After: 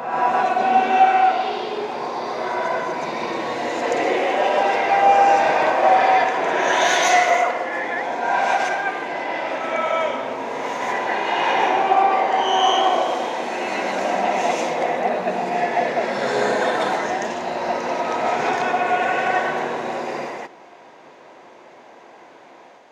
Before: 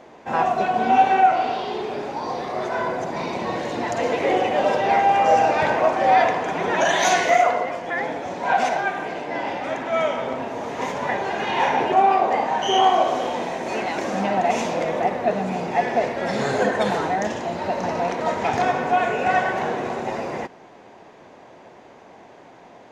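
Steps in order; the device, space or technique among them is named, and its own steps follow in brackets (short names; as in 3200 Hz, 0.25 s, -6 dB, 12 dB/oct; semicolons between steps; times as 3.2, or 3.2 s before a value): ghost voice (reverse; reverb RT60 1.2 s, pre-delay 0.117 s, DRR -1.5 dB; reverse; HPF 600 Hz 6 dB/oct)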